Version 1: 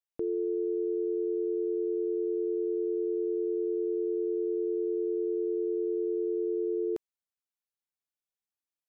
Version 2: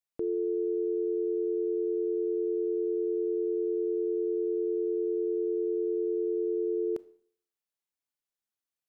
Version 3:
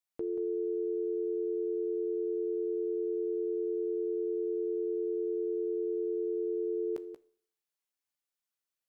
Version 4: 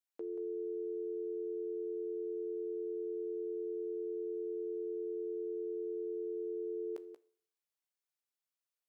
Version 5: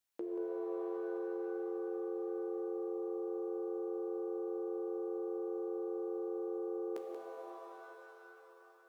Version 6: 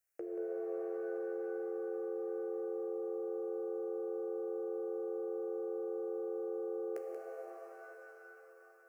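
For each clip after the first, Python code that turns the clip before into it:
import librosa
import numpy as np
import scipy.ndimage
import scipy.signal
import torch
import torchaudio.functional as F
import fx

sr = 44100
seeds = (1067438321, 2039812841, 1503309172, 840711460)

y1 = fx.rev_schroeder(x, sr, rt60_s=0.56, comb_ms=25, drr_db=17.5)
y2 = fx.low_shelf(y1, sr, hz=480.0, db=-5.5)
y2 = fx.doubler(y2, sr, ms=15.0, db=-11)
y2 = y2 + 10.0 ** (-10.0 / 20.0) * np.pad(y2, (int(182 * sr / 1000.0), 0))[:len(y2)]
y3 = scipy.signal.sosfilt(scipy.signal.butter(2, 340.0, 'highpass', fs=sr, output='sos'), y2)
y3 = y3 * 10.0 ** (-4.5 / 20.0)
y4 = fx.notch(y3, sr, hz=430.0, q=12.0)
y4 = fx.rev_shimmer(y4, sr, seeds[0], rt60_s=3.4, semitones=7, shimmer_db=-2, drr_db=3.5)
y4 = y4 * 10.0 ** (5.0 / 20.0)
y5 = fx.fixed_phaser(y4, sr, hz=970.0, stages=6)
y5 = y5 * 10.0 ** (3.0 / 20.0)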